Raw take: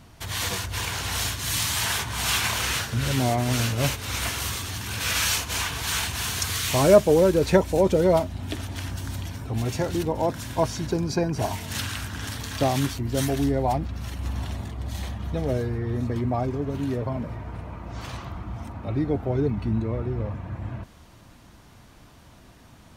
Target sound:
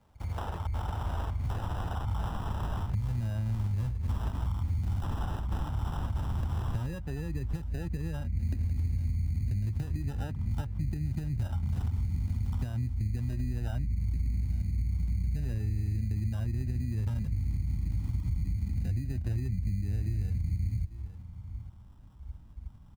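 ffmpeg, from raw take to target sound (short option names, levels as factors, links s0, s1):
-filter_complex "[0:a]afwtdn=0.0251,acompressor=threshold=0.0224:ratio=8,asetrate=39289,aresample=44100,atempo=1.12246,aecho=1:1:847:0.075,acrusher=samples=20:mix=1:aa=0.000001,asubboost=boost=8.5:cutoff=170,acrossover=split=110|3200[s0][s1][s2];[s0]acompressor=threshold=0.0282:ratio=4[s3];[s1]acompressor=threshold=0.0126:ratio=4[s4];[s2]acompressor=threshold=0.00126:ratio=4[s5];[s3][s4][s5]amix=inputs=3:normalize=0,equalizer=f=880:w=2:g=6.5"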